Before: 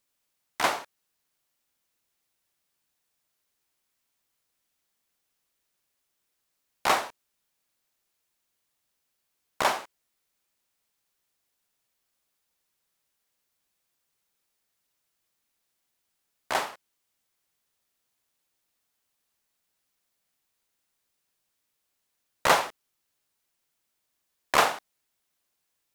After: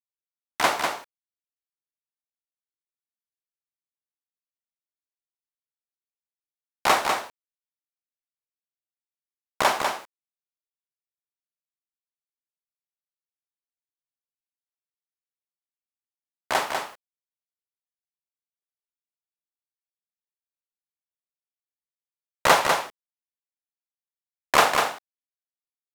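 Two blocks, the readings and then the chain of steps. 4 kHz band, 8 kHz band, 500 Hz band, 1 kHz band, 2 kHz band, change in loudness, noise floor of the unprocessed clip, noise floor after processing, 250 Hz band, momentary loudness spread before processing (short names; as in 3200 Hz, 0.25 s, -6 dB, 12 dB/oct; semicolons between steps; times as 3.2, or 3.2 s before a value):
+4.5 dB, +4.5 dB, +4.5 dB, +4.5 dB, +4.5 dB, +3.5 dB, -79 dBFS, under -85 dBFS, +4.5 dB, 15 LU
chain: bit-crush 9-bit; echo 0.197 s -5 dB; gain +3.5 dB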